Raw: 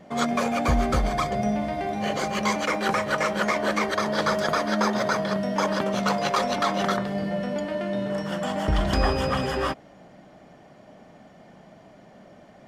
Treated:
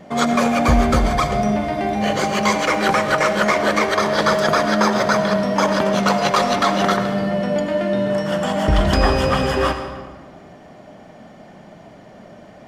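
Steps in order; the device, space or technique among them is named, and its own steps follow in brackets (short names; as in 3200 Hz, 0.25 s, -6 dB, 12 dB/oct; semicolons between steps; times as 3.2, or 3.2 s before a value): saturated reverb return (on a send at -6 dB: reverb RT60 1.4 s, pre-delay 76 ms + soft clip -22.5 dBFS, distortion -12 dB); on the sum: gain +6.5 dB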